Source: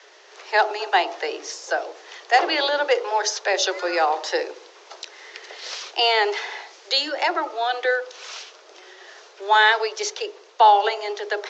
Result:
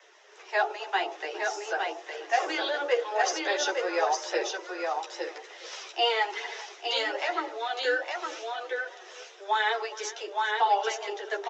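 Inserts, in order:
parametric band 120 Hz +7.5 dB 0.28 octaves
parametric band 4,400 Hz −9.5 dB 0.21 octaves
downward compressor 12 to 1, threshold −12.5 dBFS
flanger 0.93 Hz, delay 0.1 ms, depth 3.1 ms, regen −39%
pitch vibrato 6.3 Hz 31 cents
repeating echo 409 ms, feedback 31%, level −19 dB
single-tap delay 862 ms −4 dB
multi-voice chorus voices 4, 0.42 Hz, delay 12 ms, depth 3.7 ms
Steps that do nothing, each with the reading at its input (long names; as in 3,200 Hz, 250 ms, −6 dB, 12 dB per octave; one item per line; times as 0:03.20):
parametric band 120 Hz: nothing at its input below 270 Hz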